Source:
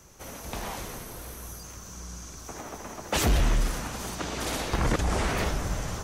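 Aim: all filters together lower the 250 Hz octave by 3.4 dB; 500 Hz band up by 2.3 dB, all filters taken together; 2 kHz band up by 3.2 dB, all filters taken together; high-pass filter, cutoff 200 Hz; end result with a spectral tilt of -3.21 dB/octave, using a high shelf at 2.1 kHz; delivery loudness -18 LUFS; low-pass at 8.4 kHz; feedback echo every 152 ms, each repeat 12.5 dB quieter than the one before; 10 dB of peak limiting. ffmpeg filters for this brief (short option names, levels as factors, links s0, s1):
-af "highpass=200,lowpass=8400,equalizer=f=250:t=o:g=-3.5,equalizer=f=500:t=o:g=4,equalizer=f=2000:t=o:g=6.5,highshelf=f=2100:g=-5,alimiter=limit=0.0841:level=0:latency=1,aecho=1:1:152|304|456:0.237|0.0569|0.0137,volume=6.31"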